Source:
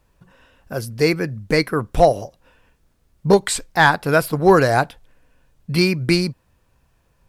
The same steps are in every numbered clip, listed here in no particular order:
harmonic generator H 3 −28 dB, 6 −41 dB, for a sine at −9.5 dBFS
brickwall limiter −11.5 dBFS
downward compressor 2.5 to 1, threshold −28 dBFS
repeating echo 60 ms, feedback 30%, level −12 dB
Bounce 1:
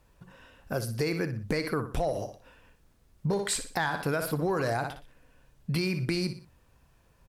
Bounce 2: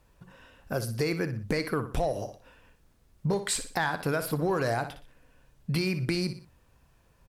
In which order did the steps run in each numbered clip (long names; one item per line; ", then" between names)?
repeating echo, then brickwall limiter, then downward compressor, then harmonic generator
brickwall limiter, then harmonic generator, then repeating echo, then downward compressor